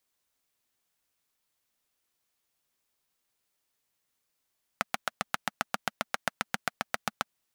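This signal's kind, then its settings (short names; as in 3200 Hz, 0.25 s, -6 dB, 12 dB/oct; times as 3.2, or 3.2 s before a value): single-cylinder engine model, steady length 2.46 s, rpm 900, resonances 220/740/1300 Hz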